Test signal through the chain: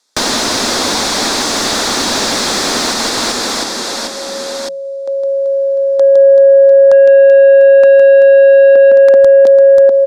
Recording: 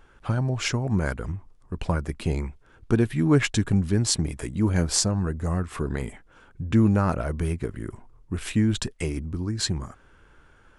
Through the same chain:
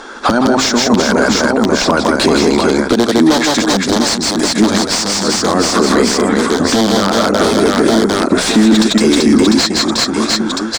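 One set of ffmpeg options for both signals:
-filter_complex "[0:a]aeval=exprs='(mod(4.47*val(0)+1,2)-1)/4.47':c=same,asplit=2[a][b];[b]aecho=0:1:160|384|697.6|1137|1751:0.631|0.398|0.251|0.158|0.1[c];[a][c]amix=inputs=2:normalize=0,aexciter=amount=10.7:drive=6.7:freq=3.8k,acompressor=threshold=-17dB:ratio=16,lowpass=6.4k,lowshelf=f=170:t=q:w=3:g=-10,bandreject=f=60:t=h:w=6,bandreject=f=120:t=h:w=6,bandreject=f=180:t=h:w=6,volume=13dB,asoftclip=hard,volume=-13dB,bandreject=f=3k:w=9,asplit=2[d][e];[e]highpass=f=720:p=1,volume=18dB,asoftclip=type=tanh:threshold=-11dB[f];[d][f]amix=inputs=2:normalize=0,lowpass=f=1.4k:p=1,volume=-6dB,bass=f=250:g=-2,treble=f=4k:g=-8,alimiter=level_in=20.5dB:limit=-1dB:release=50:level=0:latency=1,volume=-1dB"

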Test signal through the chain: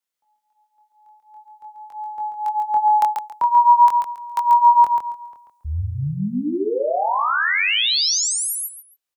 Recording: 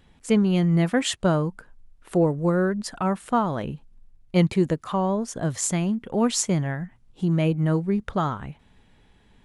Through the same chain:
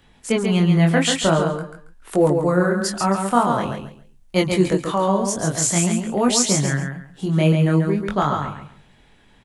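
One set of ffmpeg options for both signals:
-filter_complex "[0:a]flanger=delay=20:depth=5.7:speed=0.47,aecho=1:1:138|276|414:0.531|0.122|0.0281,acrossover=split=170|680|5500[a][b][c][d];[d]dynaudnorm=f=150:g=31:m=7dB[e];[a][b][c][e]amix=inputs=4:normalize=0,lowshelf=f=380:g=-5.5,acrossover=split=5300[f][g];[g]acompressor=threshold=-29dB:ratio=4:attack=1:release=60[h];[f][h]amix=inputs=2:normalize=0,volume=9dB"

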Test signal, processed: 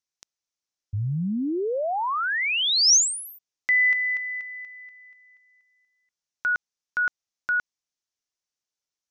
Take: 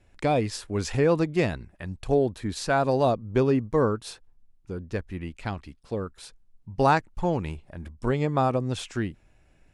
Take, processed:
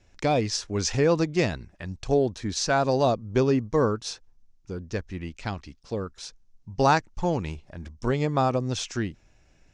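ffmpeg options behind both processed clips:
-af "lowpass=f=6k:t=q:w=3.5"

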